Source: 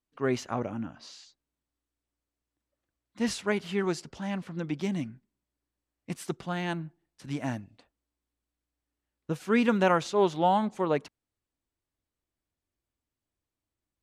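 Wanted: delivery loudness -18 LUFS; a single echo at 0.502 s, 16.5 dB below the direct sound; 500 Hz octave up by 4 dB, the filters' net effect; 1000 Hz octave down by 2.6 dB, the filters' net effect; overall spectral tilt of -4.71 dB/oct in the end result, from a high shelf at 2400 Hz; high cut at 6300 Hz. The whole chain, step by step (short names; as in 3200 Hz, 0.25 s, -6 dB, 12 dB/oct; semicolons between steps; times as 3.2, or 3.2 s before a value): LPF 6300 Hz; bell 500 Hz +6.5 dB; bell 1000 Hz -5.5 dB; high shelf 2400 Hz -6 dB; echo 0.502 s -16.5 dB; gain +10 dB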